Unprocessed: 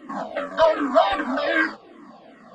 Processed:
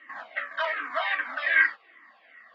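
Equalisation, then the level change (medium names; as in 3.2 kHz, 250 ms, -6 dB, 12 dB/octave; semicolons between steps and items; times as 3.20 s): band-pass filter 2 kHz, Q 4.3; distance through air 100 m; tilt EQ +2 dB/octave; +6.5 dB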